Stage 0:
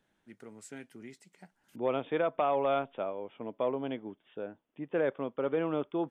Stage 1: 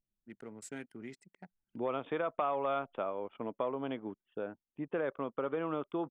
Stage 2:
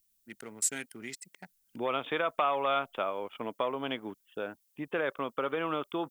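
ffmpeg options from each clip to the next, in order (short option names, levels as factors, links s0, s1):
-af "acompressor=threshold=0.0178:ratio=3,adynamicequalizer=threshold=0.00158:dfrequency=1200:dqfactor=2.3:tfrequency=1200:tqfactor=2.3:attack=5:release=100:ratio=0.375:range=3.5:mode=boostabove:tftype=bell,anlmdn=0.000398,volume=1.19"
-af "crystalizer=i=10:c=0"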